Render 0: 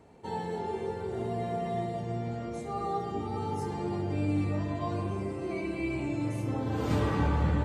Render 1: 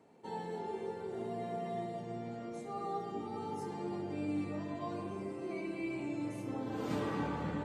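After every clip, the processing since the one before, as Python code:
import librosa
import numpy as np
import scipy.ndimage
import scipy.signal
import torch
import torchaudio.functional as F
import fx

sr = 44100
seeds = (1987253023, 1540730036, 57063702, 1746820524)

y = scipy.signal.sosfilt(scipy.signal.cheby1(2, 1.0, 200.0, 'highpass', fs=sr, output='sos'), x)
y = y * 10.0 ** (-5.5 / 20.0)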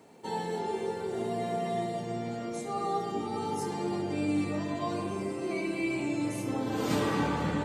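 y = fx.high_shelf(x, sr, hz=3200.0, db=9.0)
y = y * 10.0 ** (7.0 / 20.0)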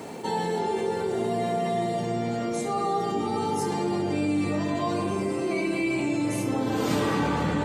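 y = fx.env_flatten(x, sr, amount_pct=50)
y = y * 10.0 ** (2.5 / 20.0)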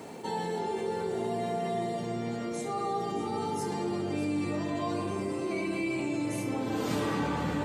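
y = x + 10.0 ** (-13.0 / 20.0) * np.pad(x, (int(614 * sr / 1000.0), 0))[:len(x)]
y = y * 10.0 ** (-5.5 / 20.0)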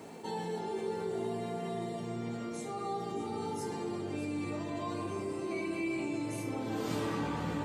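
y = fx.doubler(x, sr, ms=18.0, db=-8)
y = y * 10.0 ** (-5.0 / 20.0)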